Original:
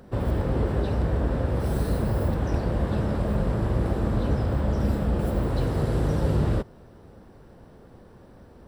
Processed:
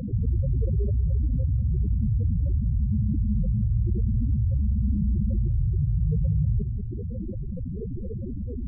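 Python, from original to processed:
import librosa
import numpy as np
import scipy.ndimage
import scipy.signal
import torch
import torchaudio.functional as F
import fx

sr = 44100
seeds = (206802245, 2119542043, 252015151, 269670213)

y = fx.spec_topn(x, sr, count=4)
y = y + 10.0 ** (-19.0 / 20.0) * np.pad(y, (int(190 * sr / 1000.0), 0))[:len(y)]
y = fx.env_flatten(y, sr, amount_pct=70)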